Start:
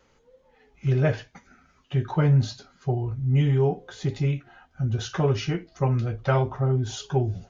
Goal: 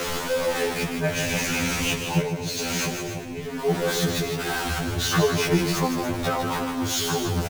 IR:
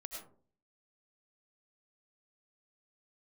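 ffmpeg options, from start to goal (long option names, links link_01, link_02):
-filter_complex "[0:a]aeval=exprs='val(0)+0.5*0.0596*sgn(val(0))':channel_layout=same,asettb=1/sr,asplit=3[link_01][link_02][link_03];[link_01]atrim=end=1.154[link_04];[link_02]atrim=start=1.15:end=3.4,asetpts=PTS-STARTPTS,afade=type=in:duration=0.004:curve=qsin,afade=type=out:start_time=2.246:duration=0.004:curve=qsin,equalizer=frequency=125:width_type=o:width=0.33:gain=12,equalizer=frequency=200:width_type=o:width=0.33:gain=3,equalizer=frequency=500:width_type=o:width=0.33:gain=9,equalizer=frequency=1250:width_type=o:width=0.33:gain=-9,equalizer=frequency=2500:width_type=o:width=0.33:gain=9,equalizer=frequency=6300:width_type=o:width=0.33:gain=6[link_05];[link_03]atrim=start=3.396[link_06];[link_04][link_05]acrossfade=duration=0.004:curve1=hsin:curve2=qsin[link_07];[link_07][link_06]acrossfade=duration=0.004:curve1=qsin:curve2=hsin,alimiter=limit=-11dB:level=0:latency=1:release=403,acompressor=threshold=-20dB:ratio=4,aecho=1:1:157.4|285.7:0.447|0.282,afftfilt=real='re*2*eq(mod(b,4),0)':imag='im*2*eq(mod(b,4),0)':win_size=2048:overlap=0.75,volume=5dB"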